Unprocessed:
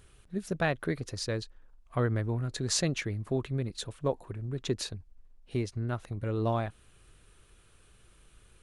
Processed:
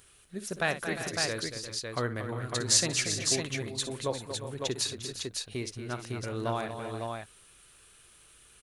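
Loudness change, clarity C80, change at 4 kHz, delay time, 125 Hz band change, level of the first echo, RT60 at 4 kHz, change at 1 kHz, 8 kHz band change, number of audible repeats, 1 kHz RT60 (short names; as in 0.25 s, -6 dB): +1.5 dB, none, +7.5 dB, 58 ms, -5.5 dB, -12.0 dB, none, +1.5 dB, +9.0 dB, 5, none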